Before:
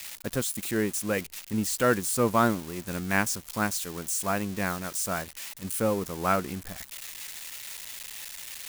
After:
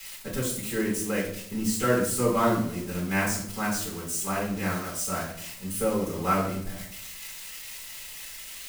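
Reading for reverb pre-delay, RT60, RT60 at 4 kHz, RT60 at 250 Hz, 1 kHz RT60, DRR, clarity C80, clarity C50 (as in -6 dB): 4 ms, 0.65 s, 0.50 s, 0.85 s, 0.60 s, -7.5 dB, 9.0 dB, 5.0 dB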